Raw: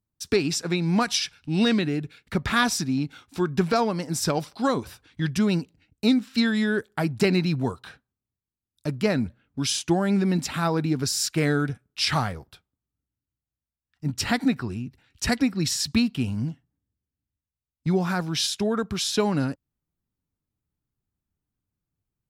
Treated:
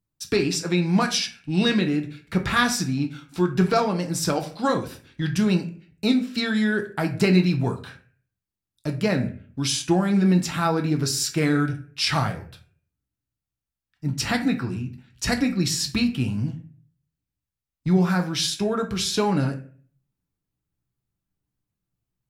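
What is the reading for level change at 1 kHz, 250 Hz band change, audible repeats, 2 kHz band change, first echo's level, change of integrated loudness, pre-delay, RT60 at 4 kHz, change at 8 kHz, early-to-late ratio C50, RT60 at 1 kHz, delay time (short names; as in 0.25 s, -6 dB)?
+1.5 dB, +1.5 dB, none, +1.5 dB, none, +1.5 dB, 6 ms, 0.30 s, +1.0 dB, 12.0 dB, 0.40 s, none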